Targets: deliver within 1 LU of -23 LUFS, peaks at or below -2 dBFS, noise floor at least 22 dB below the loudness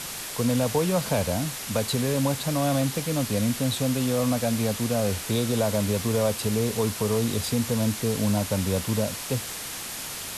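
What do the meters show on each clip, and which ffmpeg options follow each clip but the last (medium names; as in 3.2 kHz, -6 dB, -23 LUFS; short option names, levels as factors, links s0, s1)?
noise floor -35 dBFS; noise floor target -48 dBFS; loudness -25.5 LUFS; peak level -11.5 dBFS; loudness target -23.0 LUFS
-> -af "afftdn=nr=13:nf=-35"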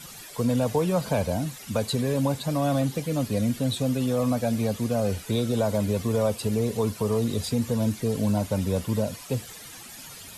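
noise floor -43 dBFS; noise floor target -48 dBFS
-> -af "afftdn=nr=6:nf=-43"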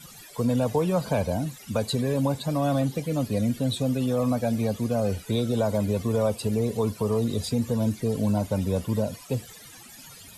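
noise floor -47 dBFS; noise floor target -49 dBFS
-> -af "afftdn=nr=6:nf=-47"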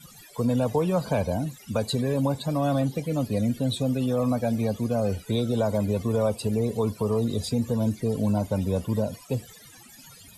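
noise floor -50 dBFS; loudness -26.5 LUFS; peak level -13.0 dBFS; loudness target -23.0 LUFS
-> -af "volume=1.5"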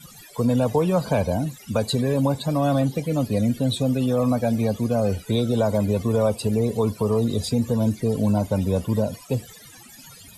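loudness -23.0 LUFS; peak level -9.5 dBFS; noise floor -46 dBFS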